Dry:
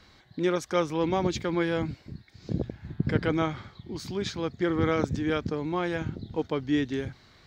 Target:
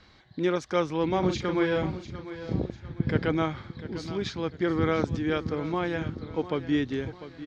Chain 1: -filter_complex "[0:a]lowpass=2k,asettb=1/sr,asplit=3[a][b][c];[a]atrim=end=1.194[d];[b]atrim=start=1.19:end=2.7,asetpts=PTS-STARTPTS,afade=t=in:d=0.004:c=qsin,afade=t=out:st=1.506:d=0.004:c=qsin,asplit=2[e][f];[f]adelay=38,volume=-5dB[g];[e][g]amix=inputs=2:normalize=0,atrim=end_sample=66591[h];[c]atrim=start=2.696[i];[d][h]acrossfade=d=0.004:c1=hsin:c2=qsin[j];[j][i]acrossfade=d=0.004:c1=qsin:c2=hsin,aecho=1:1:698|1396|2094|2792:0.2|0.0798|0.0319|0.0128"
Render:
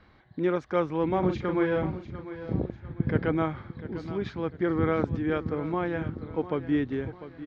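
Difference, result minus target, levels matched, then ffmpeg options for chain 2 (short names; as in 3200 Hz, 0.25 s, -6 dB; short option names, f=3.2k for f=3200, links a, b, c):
4000 Hz band -9.0 dB
-filter_complex "[0:a]lowpass=5.5k,asettb=1/sr,asplit=3[a][b][c];[a]atrim=end=1.194[d];[b]atrim=start=1.19:end=2.7,asetpts=PTS-STARTPTS,afade=t=in:d=0.004:c=qsin,afade=t=out:st=1.506:d=0.004:c=qsin,asplit=2[e][f];[f]adelay=38,volume=-5dB[g];[e][g]amix=inputs=2:normalize=0,atrim=end_sample=66591[h];[c]atrim=start=2.696[i];[d][h]acrossfade=d=0.004:c1=hsin:c2=qsin[j];[j][i]acrossfade=d=0.004:c1=qsin:c2=hsin,aecho=1:1:698|1396|2094|2792:0.2|0.0798|0.0319|0.0128"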